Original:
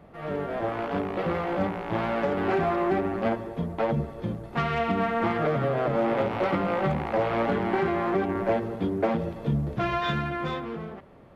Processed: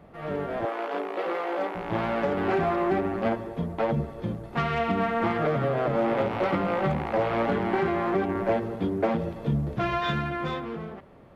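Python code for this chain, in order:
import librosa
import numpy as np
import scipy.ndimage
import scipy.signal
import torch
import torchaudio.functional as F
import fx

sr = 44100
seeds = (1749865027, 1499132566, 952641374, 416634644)

y = fx.highpass(x, sr, hz=330.0, slope=24, at=(0.65, 1.75))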